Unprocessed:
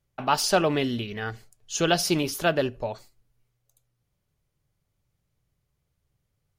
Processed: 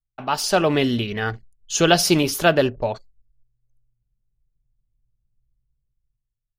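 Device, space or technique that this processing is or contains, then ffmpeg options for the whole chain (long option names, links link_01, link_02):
voice memo with heavy noise removal: -af "anlmdn=0.0158,dynaudnorm=framelen=100:gausssize=13:maxgain=14.5dB,volume=-1dB"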